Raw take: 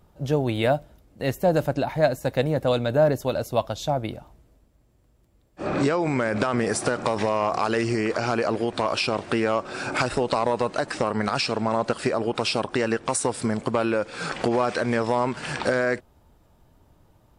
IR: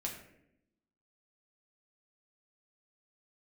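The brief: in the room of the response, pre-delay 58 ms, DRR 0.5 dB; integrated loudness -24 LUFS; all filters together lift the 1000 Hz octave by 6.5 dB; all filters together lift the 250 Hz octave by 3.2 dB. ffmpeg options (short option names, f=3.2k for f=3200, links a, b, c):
-filter_complex "[0:a]equalizer=f=250:t=o:g=3.5,equalizer=f=1k:t=o:g=8,asplit=2[a][b];[1:a]atrim=start_sample=2205,adelay=58[c];[b][c]afir=irnorm=-1:irlink=0,volume=-1dB[d];[a][d]amix=inputs=2:normalize=0,volume=-5.5dB"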